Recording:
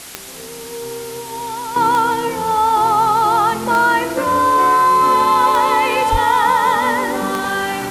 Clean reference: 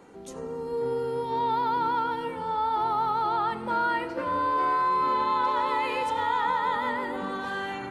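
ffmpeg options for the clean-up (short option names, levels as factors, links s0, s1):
-filter_complex "[0:a]adeclick=t=4,asplit=3[s0][s1][s2];[s0]afade=t=out:st=6.11:d=0.02[s3];[s1]highpass=f=140:w=0.5412,highpass=f=140:w=1.3066,afade=t=in:st=6.11:d=0.02,afade=t=out:st=6.23:d=0.02[s4];[s2]afade=t=in:st=6.23:d=0.02[s5];[s3][s4][s5]amix=inputs=3:normalize=0,afwtdn=0.022,asetnsamples=n=441:p=0,asendcmd='1.76 volume volume -12dB',volume=1"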